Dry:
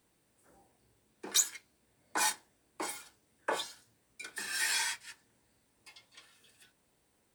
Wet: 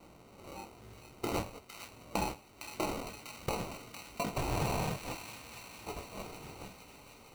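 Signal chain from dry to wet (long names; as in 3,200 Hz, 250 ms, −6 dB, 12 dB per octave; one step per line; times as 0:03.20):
chorus effect 0.89 Hz, delay 16.5 ms, depth 5.1 ms
downward compressor 16 to 1, threshold −49 dBFS, peak gain reduction 24 dB
decimation without filtering 26×
harmonic and percussive parts rebalanced harmonic +7 dB
delay with a high-pass on its return 458 ms, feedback 65%, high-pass 1,600 Hz, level −6 dB
level +15 dB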